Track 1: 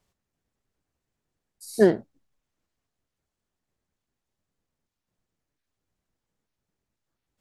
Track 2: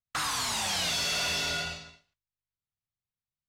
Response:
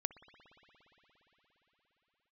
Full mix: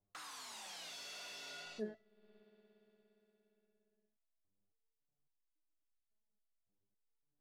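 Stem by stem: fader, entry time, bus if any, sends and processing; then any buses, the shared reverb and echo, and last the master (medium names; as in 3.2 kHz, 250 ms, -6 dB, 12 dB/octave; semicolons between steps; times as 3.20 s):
+0.5 dB, 0.00 s, send -19.5 dB, level-controlled noise filter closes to 740 Hz; treble shelf 5 kHz -8.5 dB; resonator arpeggio 3.6 Hz 100–1400 Hz
1.40 s -19 dB -> 1.89 s -11 dB, 0.00 s, send -9 dB, Chebyshev high-pass 320 Hz, order 2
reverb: on, pre-delay 58 ms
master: compression 2.5:1, threshold -49 dBFS, peak gain reduction 19.5 dB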